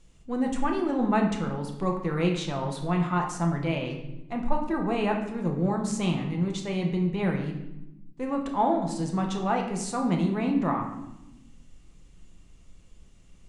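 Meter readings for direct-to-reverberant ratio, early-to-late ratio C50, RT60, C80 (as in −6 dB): 1.5 dB, 6.0 dB, 0.95 s, 8.5 dB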